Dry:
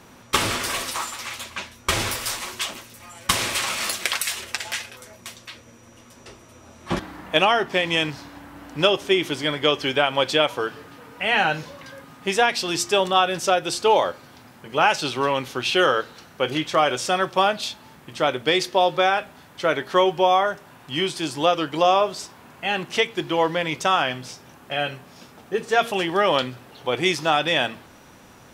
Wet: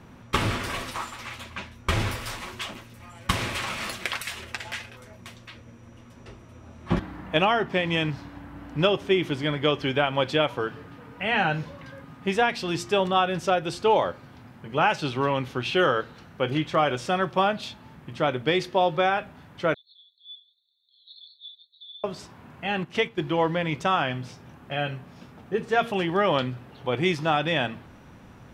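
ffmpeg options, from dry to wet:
-filter_complex "[0:a]asettb=1/sr,asplit=3[a][b][c];[a]atrim=end=19.744[d];[b]atrim=start=19.74:end=22.04,asetpts=PTS-STARTPTS,afade=t=in:d=0.004:c=qsin,afade=t=out:st=2.296:d=0.004:c=qsin,asuperpass=centerf=3900:order=20:qfactor=3.9[e];[c]atrim=start=22.036[f];[d][e]acrossfade=d=0.004:c1=hsin:c2=qsin[g];[g][f]acrossfade=d=0.004:c1=qsin:c2=hsin,asettb=1/sr,asplit=3[h][i][j];[h]atrim=end=22.674[k];[i]atrim=start=22.67:end=23.23,asetpts=PTS-STARTPTS,afade=t=in:d=0.004:c=qsin,afade=t=out:st=0.556:d=0.004:c=qsin,agate=range=-7dB:threshold=-32dB:ratio=16:release=100:detection=peak[l];[j]atrim=start=23.226[m];[k][l]acrossfade=d=0.004:c1=hsin:c2=qsin[n];[n][m]acrossfade=d=0.004:c1=qsin:c2=hsin,bass=f=250:g=9,treble=f=4k:g=-10,volume=-3.5dB"

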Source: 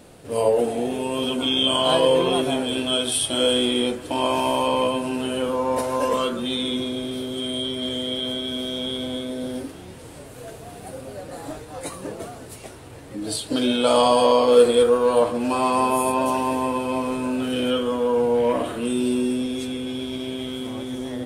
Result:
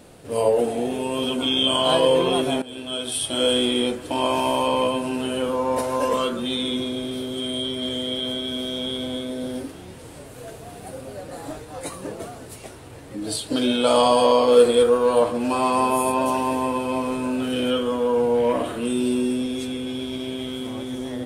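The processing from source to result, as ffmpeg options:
-filter_complex "[0:a]asplit=2[a][b];[a]atrim=end=2.62,asetpts=PTS-STARTPTS,afade=t=out:st=2.616:d=0.004:c=hsin:silence=0.177828[c];[b]atrim=start=2.62,asetpts=PTS-STARTPTS,afade=t=in:d=0.89:silence=0.177828[d];[c][d]concat=n=2:v=0:a=1"

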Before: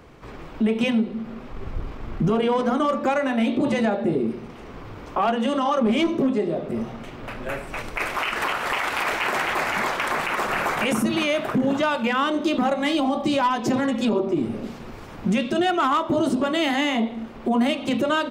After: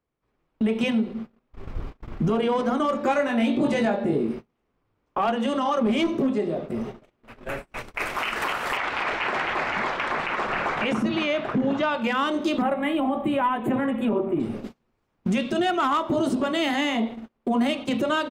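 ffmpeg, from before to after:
-filter_complex "[0:a]asettb=1/sr,asplit=3[a][b][c];[a]atrim=end=2.934[d];[b]atrim=start=2.93:end=4.39,asetpts=PTS-STARTPTS,afade=t=in:d=0.004:c=qsin,afade=t=out:st=1.456:d=0.004:c=qsin,asplit=2[e][f];[f]adelay=21,volume=-4.5dB[g];[e][g]amix=inputs=2:normalize=0,atrim=end_sample=64386[h];[c]atrim=start=4.386[i];[d][h]acrossfade=d=0.004:c1=hsin:c2=qsin[j];[j][i]acrossfade=d=0.004:c1=qsin:c2=hsin,asplit=2[k][l];[l]afade=t=in:st=6.36:d=0.01,afade=t=out:st=6.87:d=0.01,aecho=0:1:490|980|1470|1960|2450:0.223872|0.111936|0.055968|0.027984|0.013992[m];[k][m]amix=inputs=2:normalize=0,asettb=1/sr,asplit=3[n][o][p];[n]atrim=end=8.774[q];[o]atrim=start=8.77:end=12.02,asetpts=PTS-STARTPTS,afade=t=in:d=0.004:c=qsin,afade=t=out:st=3.246:d=0.004:c=qsin,lowpass=4.1k[r];[p]atrim=start=12.016[s];[q][r]acrossfade=d=0.004:c1=hsin:c2=qsin[t];[t][s]acrossfade=d=0.004:c1=qsin:c2=hsin,asettb=1/sr,asplit=3[u][v][w];[u]atrim=end=12.624[x];[v]atrim=start=12.62:end=14.4,asetpts=PTS-STARTPTS,afade=t=in:d=0.004:c=qsin,afade=t=out:st=1.776:d=0.004:c=qsin,asuperstop=centerf=5400:order=4:qfactor=0.72[y];[w]atrim=start=14.396[z];[x][y]acrossfade=d=0.004:c1=hsin:c2=qsin[aa];[aa][z]acrossfade=d=0.004:c1=qsin:c2=hsin,agate=range=-33dB:threshold=-30dB:ratio=16:detection=peak,volume=-2dB"

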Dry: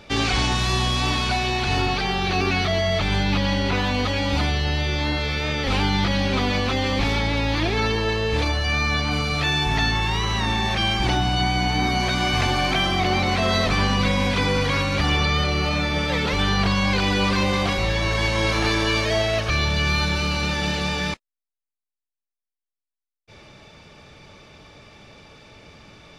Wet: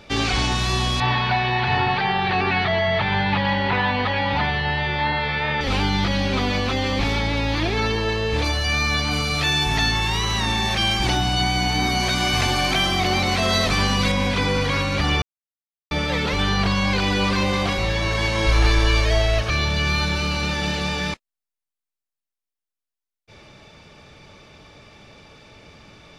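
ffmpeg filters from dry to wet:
-filter_complex "[0:a]asettb=1/sr,asplit=3[a][b][c];[a]atrim=end=1.004[d];[b]atrim=start=1:end=5.61,asetpts=PTS-STARTPTS,afade=t=in:d=0.004:c=qsin,afade=t=out:st=4.606:d=0.004:c=qsin,highpass=100,equalizer=f=120:t=q:w=4:g=7,equalizer=f=300:t=q:w=4:g=-7,equalizer=f=890:t=q:w=4:g=10,equalizer=f=1.8k:t=q:w=4:g=8,lowpass=f=4k:w=0.5412,lowpass=f=4k:w=1.3066[e];[c]atrim=start=5.606[f];[d][e]acrossfade=d=0.004:c1=hsin:c2=qsin[g];[g][f]acrossfade=d=0.004:c1=qsin:c2=hsin,asettb=1/sr,asplit=3[h][i][j];[h]atrim=end=8.444[k];[i]atrim=start=8.44:end=14.12,asetpts=PTS-STARTPTS,afade=t=in:d=0.004:c=qsin,afade=t=out:st=5.676:d=0.004:c=qsin,aemphasis=mode=production:type=cd[l];[j]atrim=start=14.116[m];[k][l]acrossfade=d=0.004:c1=hsin:c2=qsin[n];[n][m]acrossfade=d=0.004:c1=qsin:c2=hsin,asplit=3[o][p][q];[o]afade=t=out:st=18.46:d=0.02[r];[p]asubboost=boost=10:cutoff=52,afade=t=in:st=18.46:d=0.02,afade=t=out:st=19.41:d=0.02[s];[q]afade=t=in:st=19.41:d=0.02[t];[r][s][t]amix=inputs=3:normalize=0,asplit=3[u][v][w];[u]atrim=end=15.22,asetpts=PTS-STARTPTS,afade=t=out:st=15.216:d=0.004:c=hsin[x];[v]atrim=start=15.22:end=15.91,asetpts=PTS-STARTPTS,volume=0[y];[w]atrim=start=15.91,asetpts=PTS-STARTPTS,afade=t=in:d=0.004:c=hsin[z];[x][y][z]concat=n=3:v=0:a=1"

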